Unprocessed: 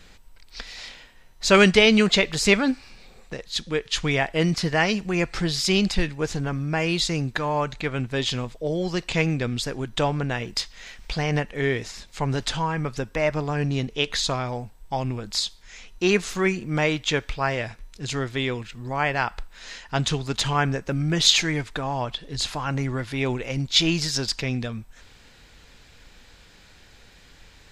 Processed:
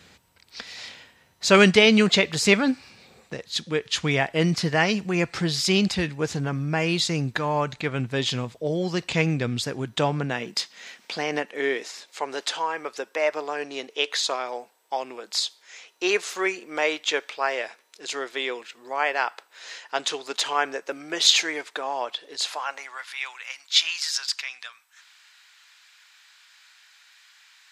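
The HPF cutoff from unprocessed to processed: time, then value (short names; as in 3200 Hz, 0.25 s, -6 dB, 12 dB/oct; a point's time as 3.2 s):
HPF 24 dB/oct
9.74 s 79 Hz
10.45 s 170 Hz
12.19 s 380 Hz
22.33 s 380 Hz
23.16 s 1100 Hz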